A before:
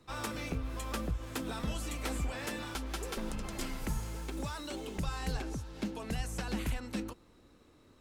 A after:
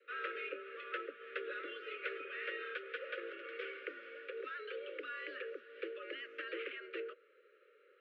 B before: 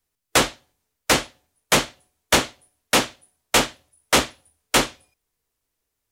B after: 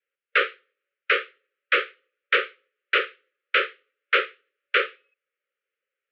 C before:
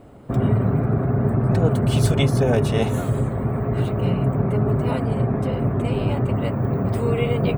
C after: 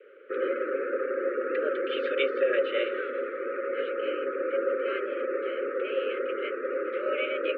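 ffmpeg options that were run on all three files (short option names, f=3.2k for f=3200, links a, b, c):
-af "asuperstop=centerf=690:order=12:qfactor=0.99,adynamicequalizer=threshold=0.00447:dfrequency=1100:dqfactor=6:tfrequency=1100:tqfactor=6:attack=5:release=100:ratio=0.375:range=1.5:mode=boostabove:tftype=bell,highpass=f=320:t=q:w=0.5412,highpass=f=320:t=q:w=1.307,lowpass=f=2.7k:t=q:w=0.5176,lowpass=f=2.7k:t=q:w=0.7071,lowpass=f=2.7k:t=q:w=1.932,afreqshift=130,volume=1.5dB"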